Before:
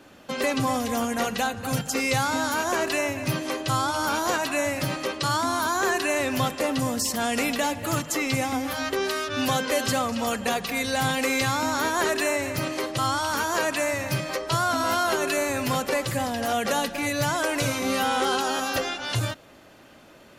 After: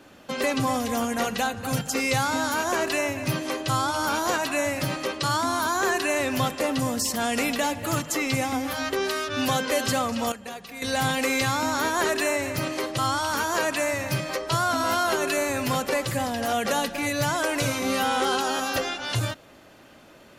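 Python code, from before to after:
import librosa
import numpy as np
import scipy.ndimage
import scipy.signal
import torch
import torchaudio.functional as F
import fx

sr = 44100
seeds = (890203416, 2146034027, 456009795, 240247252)

y = fx.edit(x, sr, fx.clip_gain(start_s=10.32, length_s=0.5, db=-11.5), tone=tone)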